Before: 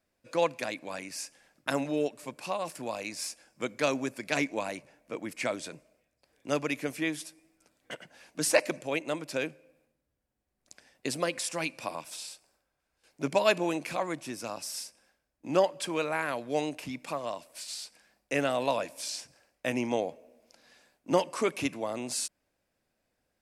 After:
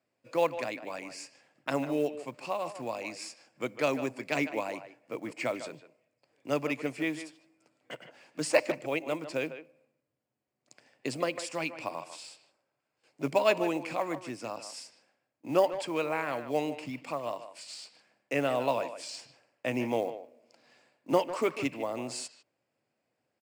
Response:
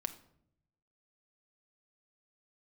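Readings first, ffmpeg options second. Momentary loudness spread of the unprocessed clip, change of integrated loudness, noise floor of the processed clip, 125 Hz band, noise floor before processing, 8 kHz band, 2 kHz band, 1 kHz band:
14 LU, -0.5 dB, -82 dBFS, -0.5 dB, -81 dBFS, -7.0 dB, -1.5 dB, 0.0 dB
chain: -filter_complex "[0:a]highpass=f=120:w=0.5412,highpass=f=120:w=1.3066,equalizer=f=120:t=q:w=4:g=5,equalizer=f=190:t=q:w=4:g=-6,equalizer=f=1.6k:t=q:w=4:g=-5,equalizer=f=3.7k:t=q:w=4:g=-7,equalizer=f=6k:t=q:w=4:g=-9,lowpass=f=7.5k:w=0.5412,lowpass=f=7.5k:w=1.3066,acrusher=bits=7:mode=log:mix=0:aa=0.000001,asplit=2[a][b];[b]adelay=150,highpass=300,lowpass=3.4k,asoftclip=type=hard:threshold=-17.5dB,volume=-11dB[c];[a][c]amix=inputs=2:normalize=0"

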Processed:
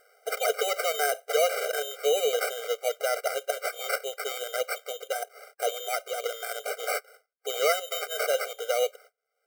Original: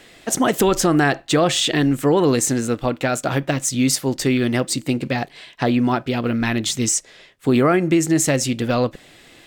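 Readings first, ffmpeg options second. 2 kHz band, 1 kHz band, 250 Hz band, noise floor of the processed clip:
-6.5 dB, -7.5 dB, under -35 dB, -80 dBFS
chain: -af "agate=range=-36dB:threshold=-41dB:ratio=16:detection=peak,acompressor=mode=upward:threshold=-29dB:ratio=2.5,acrusher=samples=13:mix=1:aa=0.000001,equalizer=f=250:t=o:w=1:g=-10,equalizer=f=1k:t=o:w=1:g=-8,equalizer=f=4k:t=o:w=1:g=-7,afftfilt=real='re*eq(mod(floor(b*sr/1024/400),2),1)':imag='im*eq(mod(floor(b*sr/1024/400),2),1)':win_size=1024:overlap=0.75"

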